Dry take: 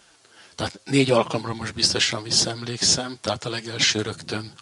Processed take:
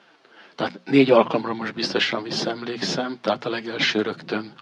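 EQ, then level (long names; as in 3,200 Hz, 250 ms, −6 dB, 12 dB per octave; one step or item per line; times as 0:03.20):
high-pass filter 170 Hz 24 dB per octave
high-frequency loss of the air 300 metres
mains-hum notches 60/120/180/240 Hz
+5.0 dB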